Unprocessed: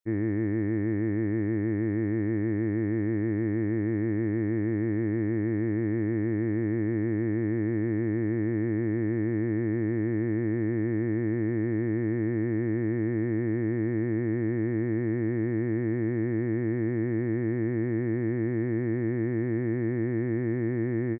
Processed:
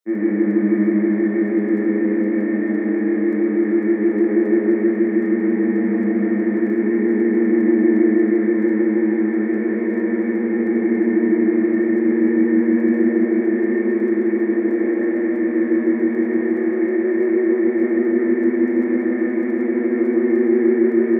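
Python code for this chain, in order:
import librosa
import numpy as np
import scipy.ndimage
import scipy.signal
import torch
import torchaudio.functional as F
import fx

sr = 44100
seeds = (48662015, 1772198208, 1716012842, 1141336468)

y = scipy.signal.sosfilt(scipy.signal.ellip(4, 1.0, 40, 210.0, 'highpass', fs=sr, output='sos'), x)
y = y + 10.0 ** (-4.5 / 20.0) * np.pad(y, (int(125 * sr / 1000.0), 0))[:len(y)]
y = fx.rev_fdn(y, sr, rt60_s=2.4, lf_ratio=1.0, hf_ratio=0.9, size_ms=86.0, drr_db=-5.5)
y = fx.dmg_crackle(y, sr, seeds[0], per_s=14.0, level_db=-46.0)
y = y * librosa.db_to_amplitude(3.5)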